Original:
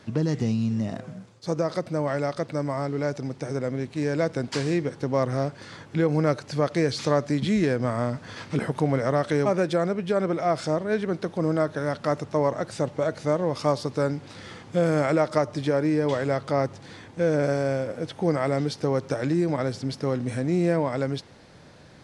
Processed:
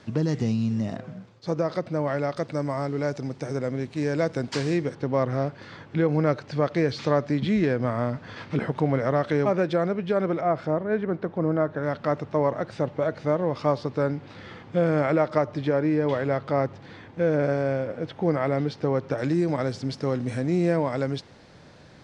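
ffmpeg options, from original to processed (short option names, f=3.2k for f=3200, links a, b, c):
-af "asetnsamples=n=441:p=0,asendcmd='0.96 lowpass f 4400;2.37 lowpass f 7800;4.95 lowpass f 3800;10.41 lowpass f 1900;11.83 lowpass f 3300;19.18 lowpass f 7400',lowpass=7.8k"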